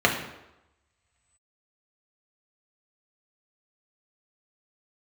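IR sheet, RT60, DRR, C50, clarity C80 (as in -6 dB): 0.95 s, -0.5 dB, 7.0 dB, 9.5 dB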